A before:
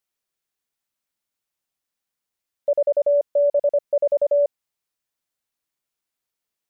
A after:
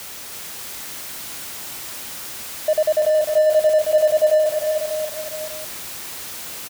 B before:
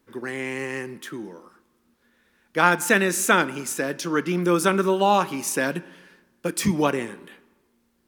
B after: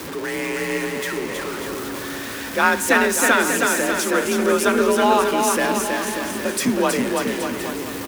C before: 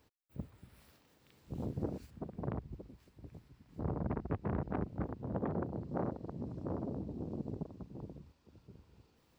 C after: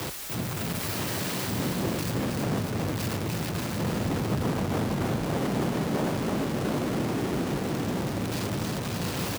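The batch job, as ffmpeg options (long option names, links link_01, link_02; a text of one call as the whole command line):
ffmpeg -i in.wav -af "aeval=exprs='val(0)+0.5*0.0473*sgn(val(0))':channel_layout=same,aecho=1:1:320|592|823.2|1020|1187:0.631|0.398|0.251|0.158|0.1,afreqshift=43" out.wav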